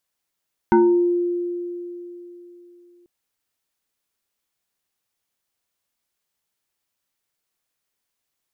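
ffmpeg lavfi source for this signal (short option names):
-f lavfi -i "aevalsrc='0.316*pow(10,-3*t/3.4)*sin(2*PI*350*t+1.3*pow(10,-3*t/0.57)*sin(2*PI*1.64*350*t))':d=2.34:s=44100"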